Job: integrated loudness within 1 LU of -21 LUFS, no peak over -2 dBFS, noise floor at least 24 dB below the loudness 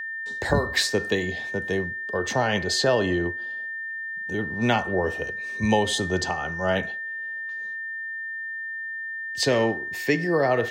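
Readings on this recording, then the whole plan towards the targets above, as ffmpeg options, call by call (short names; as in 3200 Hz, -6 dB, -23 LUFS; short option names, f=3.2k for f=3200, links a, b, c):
steady tone 1800 Hz; tone level -30 dBFS; loudness -25.5 LUFS; peak -7.5 dBFS; loudness target -21.0 LUFS
-> -af "bandreject=f=1.8k:w=30"
-af "volume=4.5dB"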